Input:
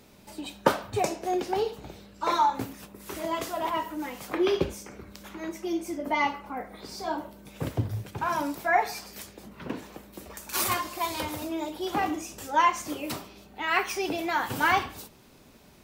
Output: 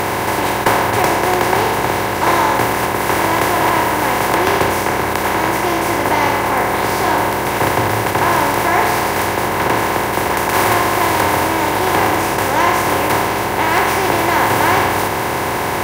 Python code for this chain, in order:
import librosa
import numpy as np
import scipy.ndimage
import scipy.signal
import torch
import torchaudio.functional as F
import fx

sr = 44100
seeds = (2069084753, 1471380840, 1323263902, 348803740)

p1 = fx.bin_compress(x, sr, power=0.2)
p2 = (np.mod(10.0 ** (2.0 / 20.0) * p1 + 1.0, 2.0) - 1.0) / 10.0 ** (2.0 / 20.0)
p3 = p1 + (p2 * 10.0 ** (-4.5 / 20.0))
y = p3 * 10.0 ** (-3.5 / 20.0)